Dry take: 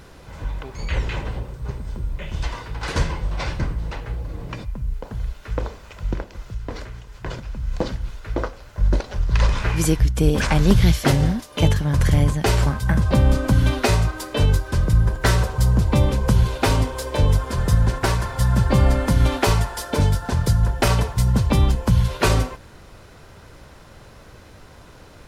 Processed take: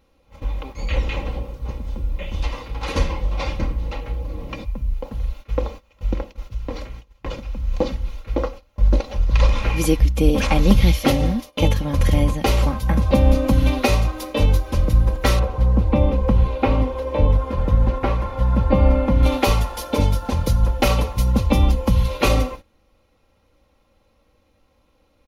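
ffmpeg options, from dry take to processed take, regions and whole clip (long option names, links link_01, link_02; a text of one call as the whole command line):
ffmpeg -i in.wav -filter_complex "[0:a]asettb=1/sr,asplit=3[link_01][link_02][link_03];[link_01]atrim=end=15.394[link_04];[link_02]atrim=start=15.39:end=19.23,asetpts=PTS-STARTPTS,afade=type=in:duration=0.004:curve=qsin,afade=type=out:start_time=3.836:duration=0.004:curve=qsin,acrossover=split=3300[link_05][link_06];[link_06]acompressor=threshold=-47dB:ratio=4:attack=1:release=60[link_07];[link_05][link_07]amix=inputs=2:normalize=0,highshelf=frequency=2900:gain=-8.5[link_08];[link_03]atrim=start=19.226[link_09];[link_04][link_08]acrossfade=duration=0.004:curve1=hsin:curve2=qsin[link_10];[link_10][link_09]acrossfade=duration=0.004:curve1=qsin:curve2=hsin,equalizer=frequency=500:width_type=o:width=0.33:gain=3,equalizer=frequency=1600:width_type=o:width=0.33:gain=-10,equalizer=frequency=2500:width_type=o:width=0.33:gain=3,equalizer=frequency=5000:width_type=o:width=0.33:gain=-3,equalizer=frequency=8000:width_type=o:width=0.33:gain=-11,agate=range=-18dB:threshold=-35dB:ratio=16:detection=peak,aecho=1:1:3.7:0.61" out.wav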